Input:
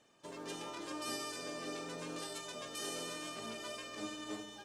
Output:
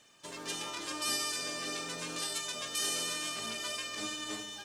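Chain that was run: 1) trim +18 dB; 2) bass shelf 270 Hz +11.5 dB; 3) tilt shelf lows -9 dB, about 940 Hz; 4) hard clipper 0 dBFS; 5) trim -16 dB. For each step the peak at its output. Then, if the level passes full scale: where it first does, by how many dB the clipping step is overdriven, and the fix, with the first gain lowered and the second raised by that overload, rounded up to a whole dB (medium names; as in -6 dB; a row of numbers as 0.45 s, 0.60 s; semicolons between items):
-9.5 dBFS, -8.0 dBFS, -3.5 dBFS, -3.5 dBFS, -19.5 dBFS; nothing clips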